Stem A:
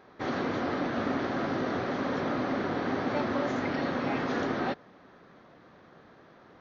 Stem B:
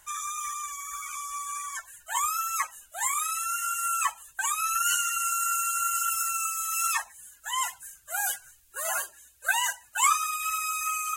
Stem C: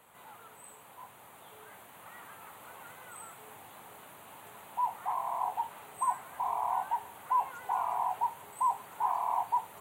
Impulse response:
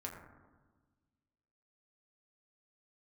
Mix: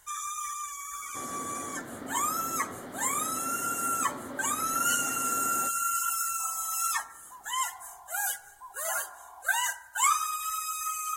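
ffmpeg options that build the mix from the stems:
-filter_complex "[0:a]adelay=950,volume=-12.5dB,asplit=2[a][b];[b]volume=-12dB[c];[1:a]volume=-3.5dB,asplit=2[d][e];[e]volume=-8.5dB[f];[2:a]aecho=1:1:2.7:0.65,tremolo=f=1.4:d=0.5,volume=-18.5dB[g];[3:a]atrim=start_sample=2205[h];[c][f]amix=inputs=2:normalize=0[i];[i][h]afir=irnorm=-1:irlink=0[j];[a][d][g][j]amix=inputs=4:normalize=0,bandreject=f=2.6k:w=6.4"

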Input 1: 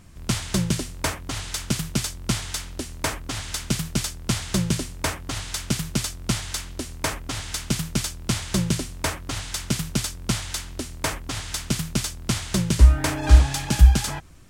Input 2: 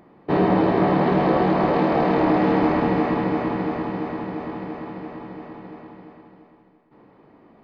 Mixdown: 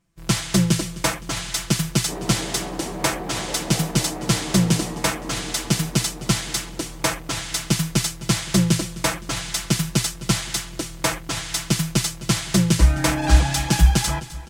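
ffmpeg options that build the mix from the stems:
-filter_complex "[0:a]equalizer=f=70:t=o:w=1:g=2.5,aecho=1:1:6:0.85,volume=2dB,asplit=2[a][b];[b]volume=-17.5dB[c];[1:a]alimiter=limit=-13.5dB:level=0:latency=1,adelay=1800,volume=-10dB[d];[c]aecho=0:1:258|516|774|1032|1290|1548|1806|2064:1|0.54|0.292|0.157|0.085|0.0459|0.0248|0.0134[e];[a][d][e]amix=inputs=3:normalize=0,lowshelf=f=63:g=-8.5,agate=range=-23dB:threshold=-40dB:ratio=16:detection=peak"

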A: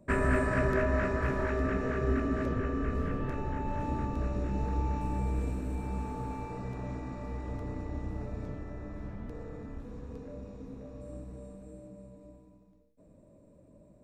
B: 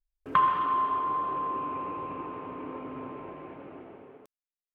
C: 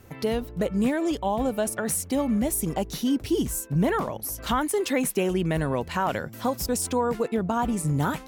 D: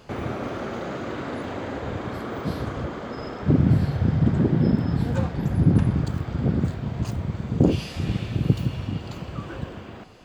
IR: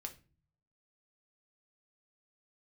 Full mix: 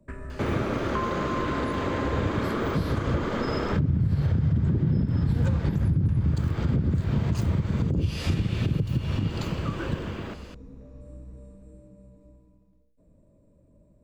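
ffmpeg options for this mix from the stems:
-filter_complex "[0:a]lowshelf=f=120:g=11,acompressor=threshold=-32dB:ratio=4,volume=-5dB[a];[1:a]adelay=600,volume=-6dB[b];[3:a]equalizer=f=720:t=o:w=0.77:g=-3,dynaudnorm=f=360:g=17:m=11.5dB,adelay=300,volume=3dB,asplit=2[c][d];[d]volume=-7dB[e];[4:a]atrim=start_sample=2205[f];[e][f]afir=irnorm=-1:irlink=0[g];[a][b][c][g]amix=inputs=4:normalize=0,bandreject=f=750:w=12,acrossover=split=140[h][i];[i]acompressor=threshold=-24dB:ratio=6[j];[h][j]amix=inputs=2:normalize=0,alimiter=limit=-15.5dB:level=0:latency=1:release=197"

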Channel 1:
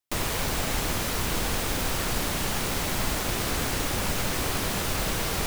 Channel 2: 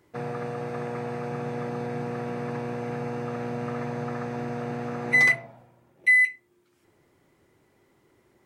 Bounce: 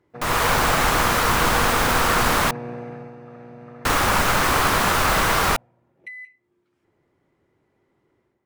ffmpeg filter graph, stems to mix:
-filter_complex "[0:a]equalizer=f=1.2k:w=0.83:g=12,adelay=100,volume=-5dB,asplit=3[a][b][c];[a]atrim=end=2.51,asetpts=PTS-STARTPTS,afade=t=out:st=2.506:d=0.004:c=hsin[d];[b]atrim=start=2.51:end=3.85,asetpts=PTS-STARTPTS,volume=0[e];[c]atrim=start=3.85,asetpts=PTS-STARTPTS,afade=t=in:d=0.004:c=hsin[f];[d][e][f]concat=n=3:v=0:a=1[g];[1:a]lowpass=f=2.3k:p=1,acompressor=threshold=-33dB:ratio=12,volume=-3.5dB,afade=t=out:st=2.7:d=0.46:silence=0.334965[h];[g][h]amix=inputs=2:normalize=0,dynaudnorm=f=110:g=5:m=9.5dB"

